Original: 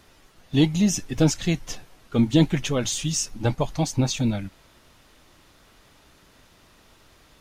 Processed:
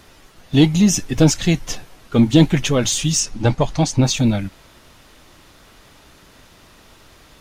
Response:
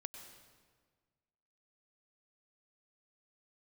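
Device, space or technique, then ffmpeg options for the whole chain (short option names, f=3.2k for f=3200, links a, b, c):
parallel distortion: -filter_complex "[0:a]asettb=1/sr,asplit=3[a][b][c];[a]atrim=end=3.204[d];[b]atrim=start=3.2:end=4.03,asetpts=PTS-STARTPTS,afade=t=in:d=0.004:c=qsin,afade=t=out:st=0.826:d=0.004:c=qsin,lowpass=8.6k[e];[c]atrim=start=4.026[f];[d][e]acrossfade=d=0.004:c1=hsin:c2=qsin[g];[g][f]acrossfade=d=0.004:c1=qsin:c2=hsin,asplit=2[h][i];[i]asoftclip=type=hard:threshold=-21.5dB,volume=-10dB[j];[h][j]amix=inputs=2:normalize=0,volume=5dB"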